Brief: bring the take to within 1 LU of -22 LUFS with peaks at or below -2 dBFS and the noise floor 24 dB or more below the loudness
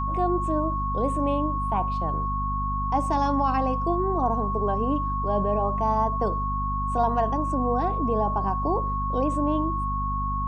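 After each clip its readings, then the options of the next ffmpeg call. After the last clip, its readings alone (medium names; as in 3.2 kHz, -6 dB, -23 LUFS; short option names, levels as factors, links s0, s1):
hum 50 Hz; highest harmonic 250 Hz; hum level -27 dBFS; steady tone 1.1 kHz; tone level -27 dBFS; loudness -25.5 LUFS; peak level -11.5 dBFS; loudness target -22.0 LUFS
-> -af "bandreject=f=50:t=h:w=4,bandreject=f=100:t=h:w=4,bandreject=f=150:t=h:w=4,bandreject=f=200:t=h:w=4,bandreject=f=250:t=h:w=4"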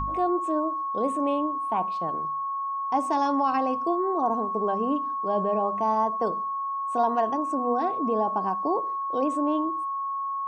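hum not found; steady tone 1.1 kHz; tone level -27 dBFS
-> -af "bandreject=f=1100:w=30"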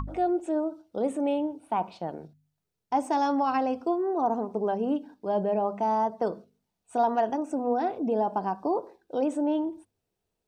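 steady tone not found; loudness -28.5 LUFS; peak level -14.5 dBFS; loudness target -22.0 LUFS
-> -af "volume=2.11"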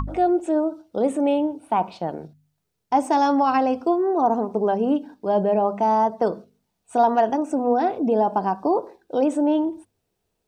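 loudness -22.0 LUFS; peak level -8.0 dBFS; noise floor -76 dBFS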